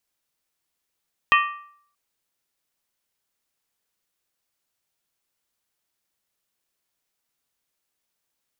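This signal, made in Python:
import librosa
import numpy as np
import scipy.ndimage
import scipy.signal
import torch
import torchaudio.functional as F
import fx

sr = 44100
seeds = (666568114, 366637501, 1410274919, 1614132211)

y = fx.strike_skin(sr, length_s=0.63, level_db=-13, hz=1170.0, decay_s=0.61, tilt_db=2.5, modes=5)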